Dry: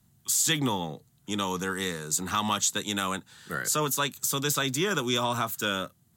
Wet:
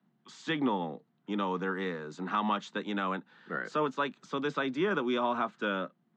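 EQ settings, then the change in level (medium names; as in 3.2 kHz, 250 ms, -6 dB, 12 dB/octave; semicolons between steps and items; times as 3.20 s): steep high-pass 180 Hz 36 dB/octave; Bessel low-pass 1.9 kHz, order 2; distance through air 140 m; 0.0 dB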